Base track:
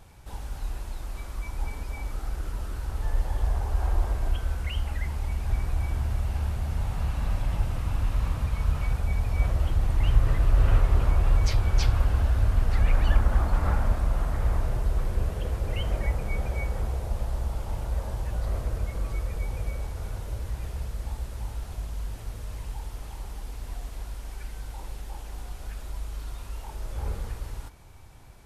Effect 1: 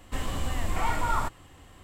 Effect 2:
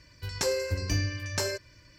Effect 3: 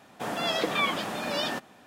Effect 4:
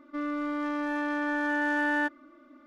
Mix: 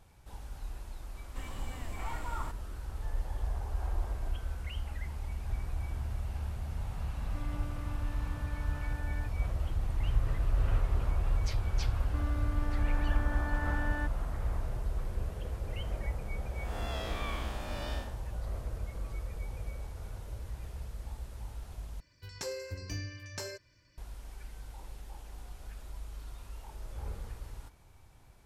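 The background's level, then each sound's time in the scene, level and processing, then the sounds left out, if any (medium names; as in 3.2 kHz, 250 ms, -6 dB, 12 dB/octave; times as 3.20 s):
base track -8.5 dB
1.23 s: add 1 -12.5 dB
7.20 s: add 4 -15.5 dB + peak limiter -25 dBFS
11.99 s: add 4 -11.5 dB
16.45 s: add 3 -9 dB + spectral blur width 189 ms
22.00 s: replace with 2 -10.5 dB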